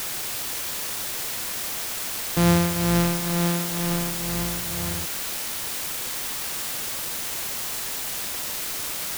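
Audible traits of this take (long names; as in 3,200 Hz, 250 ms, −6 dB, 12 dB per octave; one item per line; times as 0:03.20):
a buzz of ramps at a fixed pitch in blocks of 256 samples
tremolo triangle 2.1 Hz, depth 75%
a quantiser's noise floor 6 bits, dither triangular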